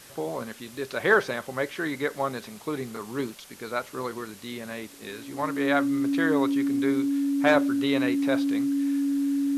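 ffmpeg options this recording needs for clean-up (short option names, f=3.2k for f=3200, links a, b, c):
-af "adeclick=t=4,bandreject=f=280:w=30,afwtdn=0.004"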